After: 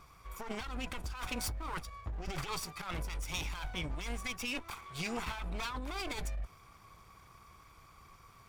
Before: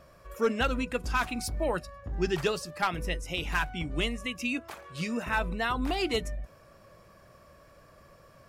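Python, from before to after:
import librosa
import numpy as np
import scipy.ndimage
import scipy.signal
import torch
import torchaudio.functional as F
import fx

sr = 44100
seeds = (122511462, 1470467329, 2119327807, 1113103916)

y = fx.lower_of_two(x, sr, delay_ms=0.87)
y = fx.peak_eq(y, sr, hz=210.0, db=-6.0, octaves=1.8)
y = fx.over_compress(y, sr, threshold_db=-36.0, ratio=-1.0)
y = y * 10.0 ** (-2.0 / 20.0)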